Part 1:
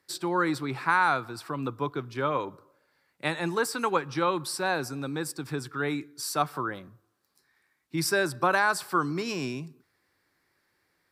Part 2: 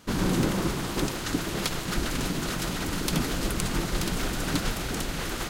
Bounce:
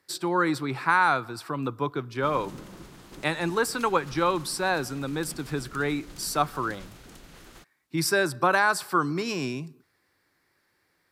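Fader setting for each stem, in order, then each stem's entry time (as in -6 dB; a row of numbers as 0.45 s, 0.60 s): +2.0 dB, -18.0 dB; 0.00 s, 2.15 s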